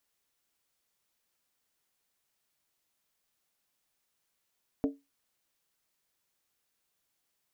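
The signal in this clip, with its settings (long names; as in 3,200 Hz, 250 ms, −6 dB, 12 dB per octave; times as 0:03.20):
struck skin, lowest mode 279 Hz, decay 0.22 s, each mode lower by 6.5 dB, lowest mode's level −22 dB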